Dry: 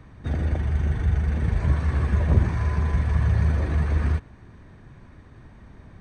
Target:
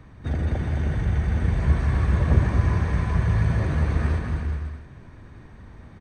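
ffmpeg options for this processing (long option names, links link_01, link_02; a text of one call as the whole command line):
ffmpeg -i in.wav -af "aecho=1:1:220|385|508.8|601.6|671.2:0.631|0.398|0.251|0.158|0.1" out.wav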